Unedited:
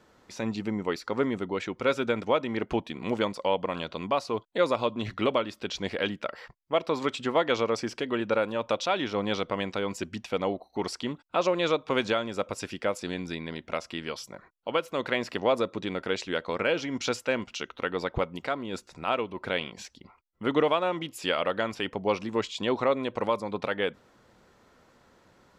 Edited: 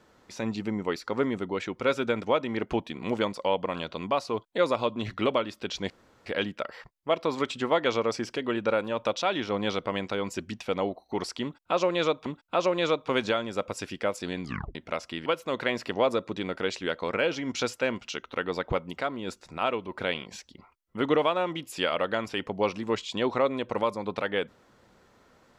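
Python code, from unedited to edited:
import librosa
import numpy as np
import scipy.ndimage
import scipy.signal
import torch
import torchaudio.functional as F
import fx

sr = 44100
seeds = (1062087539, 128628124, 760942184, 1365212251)

y = fx.edit(x, sr, fx.insert_room_tone(at_s=5.9, length_s=0.36),
    fx.repeat(start_s=11.07, length_s=0.83, count=2),
    fx.tape_stop(start_s=13.24, length_s=0.32),
    fx.cut(start_s=14.07, length_s=0.65), tone=tone)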